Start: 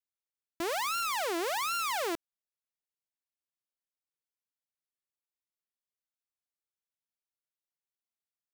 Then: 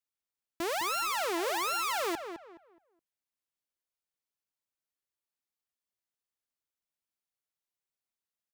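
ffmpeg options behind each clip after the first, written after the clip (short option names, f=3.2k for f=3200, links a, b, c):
-filter_complex "[0:a]asplit=2[a][b];[b]adelay=210,lowpass=f=2.2k:p=1,volume=-8dB,asplit=2[c][d];[d]adelay=210,lowpass=f=2.2k:p=1,volume=0.3,asplit=2[e][f];[f]adelay=210,lowpass=f=2.2k:p=1,volume=0.3,asplit=2[g][h];[h]adelay=210,lowpass=f=2.2k:p=1,volume=0.3[i];[a][c][e][g][i]amix=inputs=5:normalize=0"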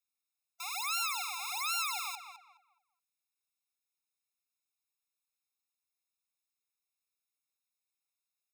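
-filter_complex "[0:a]equalizer=f=780:w=0.66:g=-11.5,asplit=2[a][b];[b]alimiter=level_in=5.5dB:limit=-24dB:level=0:latency=1:release=221,volume=-5.5dB,volume=-1dB[c];[a][c]amix=inputs=2:normalize=0,afftfilt=real='re*eq(mod(floor(b*sr/1024/700),2),1)':imag='im*eq(mod(floor(b*sr/1024/700),2),1)':win_size=1024:overlap=0.75"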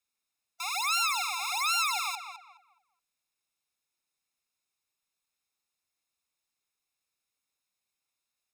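-af "highshelf=f=12k:g=-11,volume=7dB"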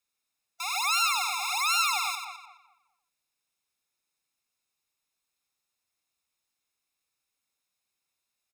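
-af "aecho=1:1:93:0.422,volume=1.5dB"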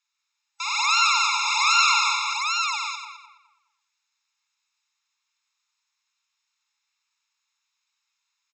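-af "aeval=exprs='0.251*(cos(1*acos(clip(val(0)/0.251,-1,1)))-cos(1*PI/2))+0.00282*(cos(5*acos(clip(val(0)/0.251,-1,1)))-cos(5*PI/2))':c=same,aecho=1:1:47|184|803:0.376|0.596|0.631,afftfilt=real='re*between(b*sr/4096,820,7800)':imag='im*between(b*sr/4096,820,7800)':win_size=4096:overlap=0.75,volume=4.5dB"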